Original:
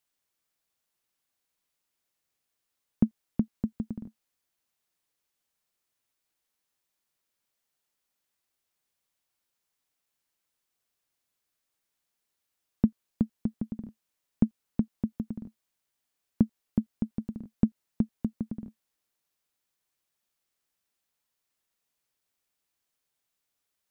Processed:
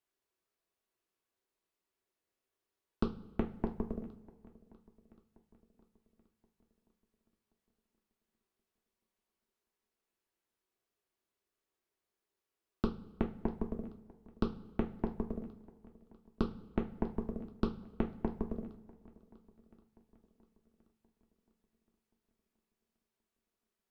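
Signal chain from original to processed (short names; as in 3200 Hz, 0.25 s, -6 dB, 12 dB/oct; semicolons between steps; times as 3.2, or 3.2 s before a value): bell 410 Hz +9 dB 0.35 oct; de-hum 47.54 Hz, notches 4; compressor 3:1, threshold -29 dBFS, peak gain reduction 10 dB; added harmonics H 8 -13 dB, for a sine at -13.5 dBFS; swung echo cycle 1.077 s, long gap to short 1.5:1, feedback 38%, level -22.5 dB; two-slope reverb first 0.26 s, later 1.7 s, from -18 dB, DRR 3 dB; mismatched tape noise reduction decoder only; gain -3 dB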